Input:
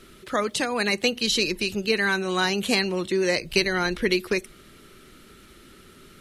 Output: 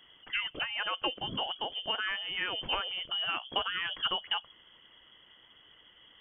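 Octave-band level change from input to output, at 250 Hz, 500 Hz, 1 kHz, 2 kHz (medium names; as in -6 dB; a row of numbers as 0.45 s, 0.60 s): -21.5 dB, -18.5 dB, -5.5 dB, -9.5 dB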